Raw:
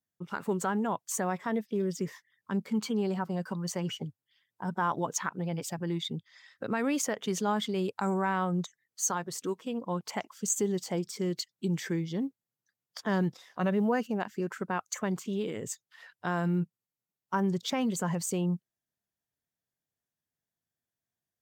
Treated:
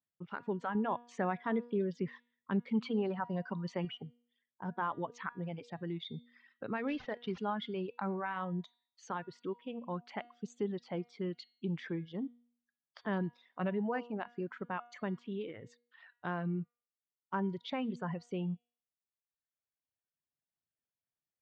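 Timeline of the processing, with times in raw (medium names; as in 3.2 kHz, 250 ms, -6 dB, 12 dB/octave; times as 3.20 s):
0.75–3.85 s: gain +4 dB
6.88–7.38 s: CVSD coder 32 kbps
whole clip: reverb removal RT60 1.2 s; low-pass 3.5 kHz 24 dB/octave; de-hum 239.5 Hz, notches 19; trim -5.5 dB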